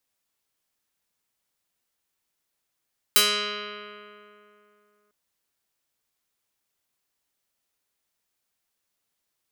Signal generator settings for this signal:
Karplus-Strong string G#3, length 1.95 s, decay 2.89 s, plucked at 0.24, medium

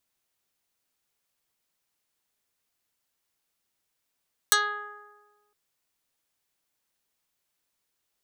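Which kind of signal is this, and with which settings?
Karplus-Strong string G#4, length 1.01 s, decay 1.46 s, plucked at 0.17, dark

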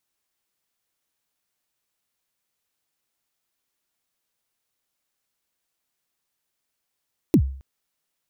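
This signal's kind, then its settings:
synth kick length 0.27 s, from 370 Hz, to 67 Hz, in 75 ms, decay 0.50 s, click on, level −9 dB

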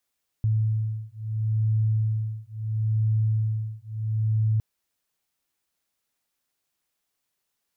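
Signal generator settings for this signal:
two tones that beat 109 Hz, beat 0.74 Hz, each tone −25 dBFS 4.16 s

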